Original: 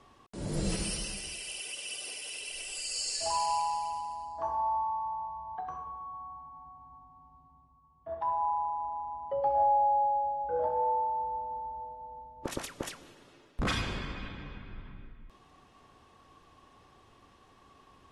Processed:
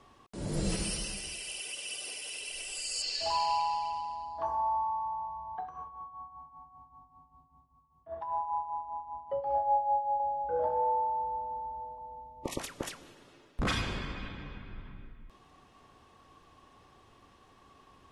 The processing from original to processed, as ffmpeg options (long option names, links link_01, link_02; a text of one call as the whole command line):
ffmpeg -i in.wav -filter_complex "[0:a]asettb=1/sr,asplit=3[link_01][link_02][link_03];[link_01]atrim=end=3.024[link_04];[link_02]atrim=start=3.02:end=4.46,asetpts=PTS-STARTPTS,afade=type=in:duration=0.004:curve=qsin,afade=type=out:start_time=1.436:duration=0.004:curve=qsin,lowpass=frequency=3900:width_type=q:width=1.9[link_05];[link_03]atrim=start=4.456[link_06];[link_04][link_05]acrossfade=duration=0.004:curve1=hsin:curve2=qsin[link_07];[link_07][link_06]acrossfade=duration=0.004:curve1=qsin:curve2=hsin,asettb=1/sr,asplit=3[link_08][link_09][link_10];[link_08]atrim=end=5.624[link_11];[link_09]atrim=start=5.62:end=10.2,asetpts=PTS-STARTPTS,afade=type=in:duration=0.004:curve=qsin,afade=type=out:start_time=4.576:duration=0.004:curve=qsin,tremolo=f=5.1:d=0.66[link_12];[link_10]atrim=start=10.196[link_13];[link_11][link_12]acrossfade=duration=0.004:curve1=hsin:curve2=qsin[link_14];[link_14][link_13]acrossfade=duration=0.004:curve1=qsin:curve2=hsin,asettb=1/sr,asplit=3[link_15][link_16][link_17];[link_15]atrim=end=11.984[link_18];[link_16]atrim=start=11.98:end=12.6,asetpts=PTS-STARTPTS,afade=type=in:duration=0.004:curve=qsin,afade=type=out:start_time=0.616:duration=0.004:curve=qsin,asuperstop=centerf=1500:order=12:qfactor=2.4[link_19];[link_17]atrim=start=12.596[link_20];[link_18][link_19]acrossfade=duration=0.004:curve1=hsin:curve2=qsin[link_21];[link_21][link_20]acrossfade=duration=0.004:curve1=qsin:curve2=hsin" out.wav